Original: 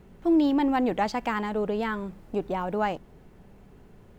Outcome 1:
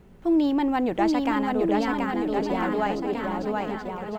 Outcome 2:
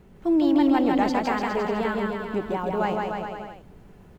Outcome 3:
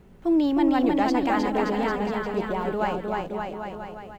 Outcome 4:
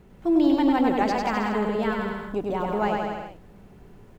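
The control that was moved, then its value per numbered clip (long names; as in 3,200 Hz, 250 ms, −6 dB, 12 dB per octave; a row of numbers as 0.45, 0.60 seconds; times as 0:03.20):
bouncing-ball delay, first gap: 730, 160, 310, 100 milliseconds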